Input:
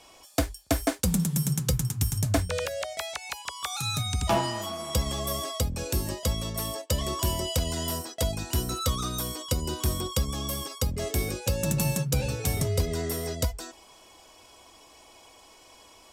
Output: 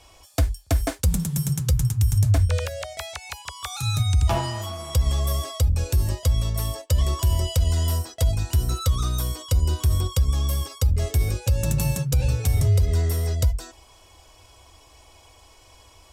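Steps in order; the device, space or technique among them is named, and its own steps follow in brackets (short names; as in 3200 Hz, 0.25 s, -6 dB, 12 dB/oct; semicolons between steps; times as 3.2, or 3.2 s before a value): car stereo with a boomy subwoofer (resonant low shelf 130 Hz +12 dB, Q 1.5; limiter -12 dBFS, peak gain reduction 10 dB)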